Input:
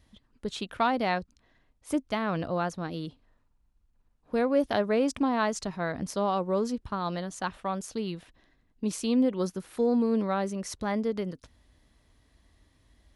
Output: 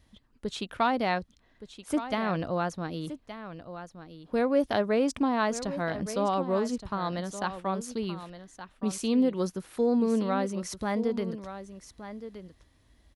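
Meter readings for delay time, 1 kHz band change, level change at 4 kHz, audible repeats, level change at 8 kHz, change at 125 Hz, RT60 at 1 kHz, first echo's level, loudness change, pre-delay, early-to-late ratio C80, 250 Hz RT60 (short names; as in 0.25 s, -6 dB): 1.17 s, +0.5 dB, +0.5 dB, 1, +0.5 dB, +0.5 dB, none, -12.0 dB, 0.0 dB, none, none, none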